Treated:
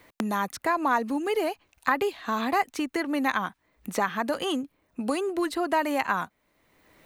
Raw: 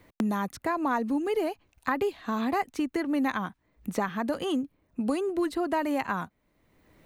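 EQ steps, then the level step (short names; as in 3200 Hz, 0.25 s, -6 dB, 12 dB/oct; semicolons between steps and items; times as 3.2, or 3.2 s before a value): low shelf 220 Hz -3 dB; low shelf 440 Hz -8.5 dB; +6.0 dB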